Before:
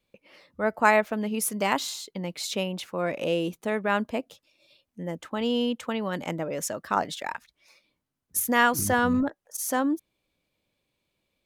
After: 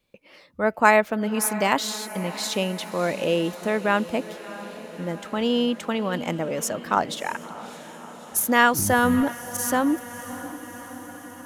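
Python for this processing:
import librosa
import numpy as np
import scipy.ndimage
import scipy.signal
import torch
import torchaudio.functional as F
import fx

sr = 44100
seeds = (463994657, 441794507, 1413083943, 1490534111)

y = fx.echo_diffused(x, sr, ms=631, feedback_pct=67, wet_db=-15.0)
y = y * 10.0 ** (3.5 / 20.0)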